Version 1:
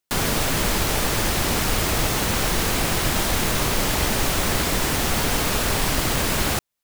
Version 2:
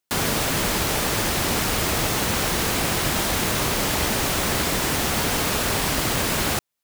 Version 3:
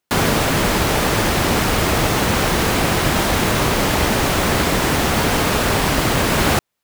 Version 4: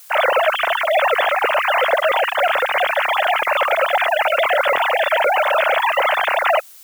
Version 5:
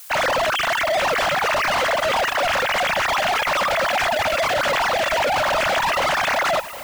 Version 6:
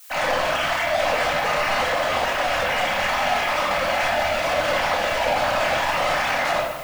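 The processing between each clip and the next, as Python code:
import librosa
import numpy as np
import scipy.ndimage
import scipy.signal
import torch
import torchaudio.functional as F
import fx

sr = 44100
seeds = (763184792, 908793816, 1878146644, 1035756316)

y1 = fx.highpass(x, sr, hz=73.0, slope=6)
y2 = fx.high_shelf(y1, sr, hz=3400.0, db=-8.0)
y2 = fx.rider(y2, sr, range_db=10, speed_s=0.5)
y2 = F.gain(torch.from_numpy(y2), 7.5).numpy()
y3 = fx.sine_speech(y2, sr)
y3 = fx.dmg_noise_colour(y3, sr, seeds[0], colour='blue', level_db=-43.0)
y4 = np.clip(y3, -10.0 ** (-21.0 / 20.0), 10.0 ** (-21.0 / 20.0))
y4 = fx.echo_feedback(y4, sr, ms=764, feedback_pct=38, wet_db=-15)
y4 = F.gain(torch.from_numpy(y4), 2.5).numpy()
y5 = fx.room_shoebox(y4, sr, seeds[1], volume_m3=290.0, walls='mixed', distance_m=2.0)
y5 = F.gain(torch.from_numpy(y5), -8.0).numpy()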